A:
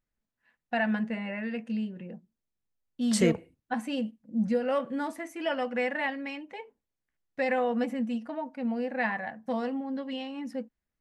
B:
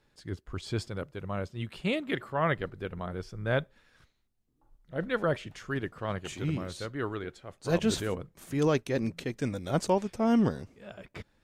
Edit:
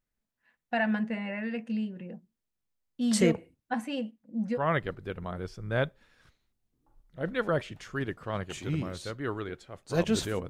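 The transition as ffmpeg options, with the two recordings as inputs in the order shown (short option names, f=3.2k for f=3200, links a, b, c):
-filter_complex "[0:a]asettb=1/sr,asplit=3[a][b][c];[a]atrim=end=3.844[d];[b]atrim=start=3.84:end=4.59,asetpts=PTS-STARTPTS,afade=t=in:d=0.004:c=qsin,afade=t=out:st=0.746:d=0.004:c=qsin,bass=f=250:g=-6,treble=f=4k:g=-4[e];[c]atrim=start=4.586[f];[d][e]acrossfade=d=0.004:c1=hsin:c2=qsin[g];[g][f]acrossfade=d=0.004:c1=qsin:c2=hsin,apad=whole_dur=10.49,atrim=end=10.49,atrim=end=4.59,asetpts=PTS-STARTPTS[h];[1:a]atrim=start=2.28:end=8.24,asetpts=PTS-STARTPTS[i];[h][i]acrossfade=d=0.06:c1=tri:c2=tri"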